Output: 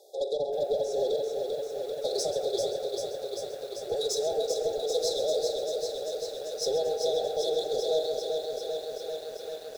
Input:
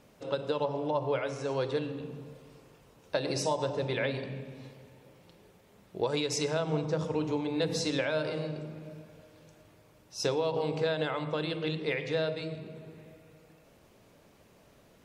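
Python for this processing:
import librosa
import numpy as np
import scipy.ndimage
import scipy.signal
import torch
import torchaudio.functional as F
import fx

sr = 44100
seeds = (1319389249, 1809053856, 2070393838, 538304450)

p1 = scipy.signal.sosfilt(scipy.signal.butter(16, 370.0, 'highpass', fs=sr, output='sos'), x)
p2 = fx.rider(p1, sr, range_db=10, speed_s=0.5)
p3 = p1 + F.gain(torch.from_numpy(p2), 2.0).numpy()
p4 = 10.0 ** (-23.0 / 20.0) * np.tanh(p3 / 10.0 ** (-23.0 / 20.0))
p5 = fx.stretch_vocoder(p4, sr, factor=0.65)
p6 = fx.brickwall_bandstop(p5, sr, low_hz=840.0, high_hz=3300.0)
p7 = p6 + fx.echo_single(p6, sr, ms=132, db=-12.5, dry=0)
y = fx.echo_crushed(p7, sr, ms=392, feedback_pct=80, bits=9, wet_db=-5.0)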